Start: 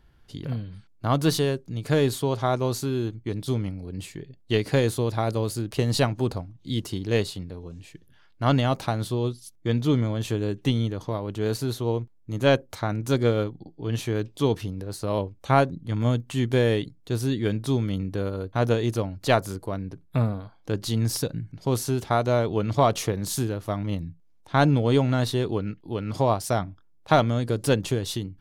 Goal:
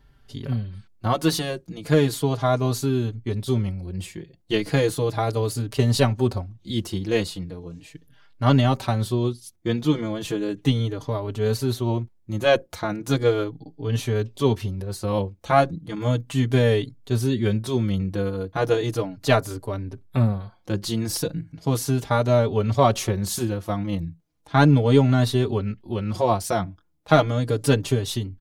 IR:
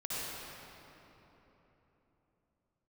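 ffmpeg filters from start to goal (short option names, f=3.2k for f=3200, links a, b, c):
-filter_complex "[0:a]asplit=2[a][b];[b]adelay=4.6,afreqshift=-0.36[c];[a][c]amix=inputs=2:normalize=1,volume=5dB"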